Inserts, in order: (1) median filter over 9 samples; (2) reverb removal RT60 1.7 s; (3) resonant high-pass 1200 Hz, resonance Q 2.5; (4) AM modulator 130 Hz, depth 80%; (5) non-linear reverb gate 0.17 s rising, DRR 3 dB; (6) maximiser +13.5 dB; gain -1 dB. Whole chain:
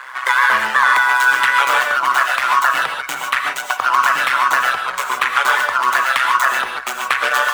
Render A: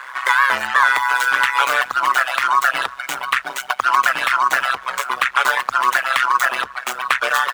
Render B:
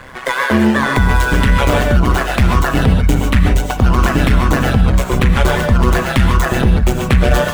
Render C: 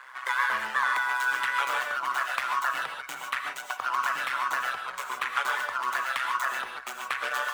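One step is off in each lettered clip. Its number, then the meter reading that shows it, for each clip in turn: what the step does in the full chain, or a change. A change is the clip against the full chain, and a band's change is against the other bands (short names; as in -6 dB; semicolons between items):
5, crest factor change +2.0 dB; 3, 250 Hz band +28.5 dB; 6, crest factor change +4.5 dB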